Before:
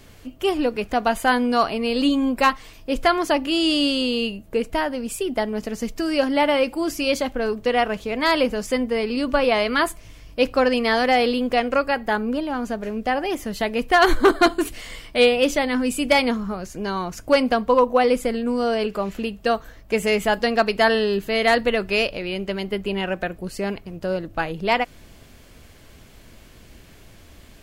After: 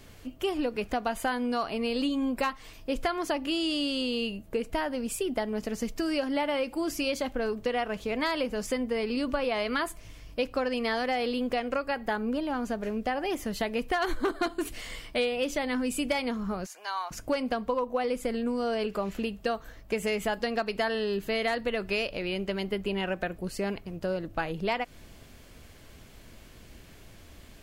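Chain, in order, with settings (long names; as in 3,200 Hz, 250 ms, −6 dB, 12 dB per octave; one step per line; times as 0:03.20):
0:16.66–0:17.11: Chebyshev high-pass filter 800 Hz, order 3
downward compressor 6 to 1, threshold −22 dBFS, peak gain reduction 11.5 dB
level −3.5 dB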